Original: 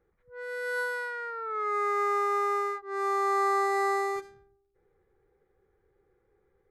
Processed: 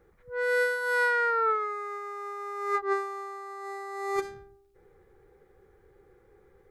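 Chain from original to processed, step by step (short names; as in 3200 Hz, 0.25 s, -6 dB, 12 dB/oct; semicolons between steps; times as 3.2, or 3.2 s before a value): negative-ratio compressor -34 dBFS, ratio -0.5; gain +5 dB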